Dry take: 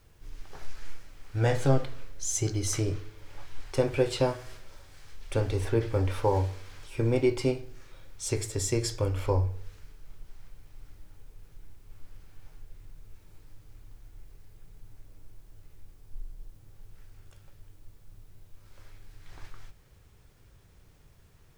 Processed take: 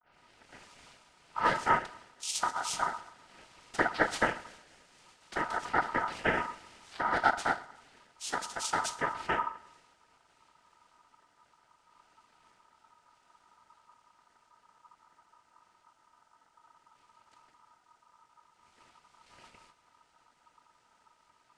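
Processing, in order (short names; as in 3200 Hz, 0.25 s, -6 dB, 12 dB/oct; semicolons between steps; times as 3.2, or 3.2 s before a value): tape start at the beginning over 0.65 s; gate with hold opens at -54 dBFS; noise vocoder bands 6; on a send: thinning echo 0.12 s, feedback 54%, high-pass 230 Hz, level -23 dB; on the sum: ring modulator 1100 Hz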